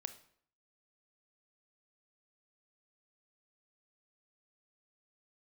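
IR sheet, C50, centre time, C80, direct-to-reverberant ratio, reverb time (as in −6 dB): 13.5 dB, 6 ms, 17.5 dB, 10.5 dB, 0.60 s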